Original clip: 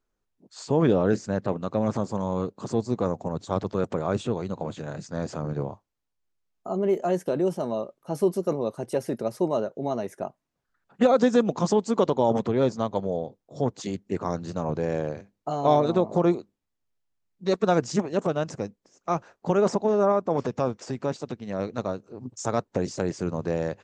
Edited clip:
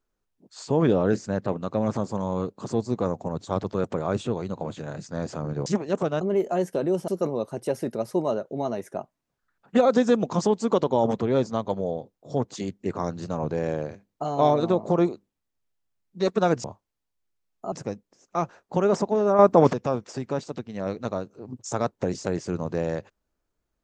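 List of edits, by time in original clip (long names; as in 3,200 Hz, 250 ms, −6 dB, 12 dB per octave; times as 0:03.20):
0:05.66–0:06.74: swap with 0:17.90–0:18.45
0:07.61–0:08.34: remove
0:20.12–0:20.46: clip gain +9 dB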